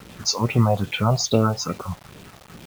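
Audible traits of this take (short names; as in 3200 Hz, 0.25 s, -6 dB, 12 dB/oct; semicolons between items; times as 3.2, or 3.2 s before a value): phasing stages 4, 2.4 Hz, lowest notch 290–1200 Hz; a quantiser's noise floor 8-bit, dither none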